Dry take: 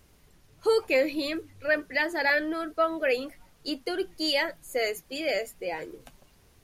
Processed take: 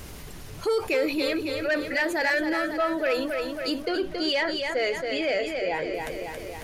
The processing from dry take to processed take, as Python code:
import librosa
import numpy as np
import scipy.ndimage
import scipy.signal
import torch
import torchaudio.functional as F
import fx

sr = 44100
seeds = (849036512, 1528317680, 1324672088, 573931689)

y = fx.lowpass(x, sr, hz=4200.0, slope=12, at=(3.82, 5.94))
y = 10.0 ** (-18.5 / 20.0) * np.tanh(y / 10.0 ** (-18.5 / 20.0))
y = fx.echo_feedback(y, sr, ms=274, feedback_pct=47, wet_db=-9.0)
y = fx.env_flatten(y, sr, amount_pct=50)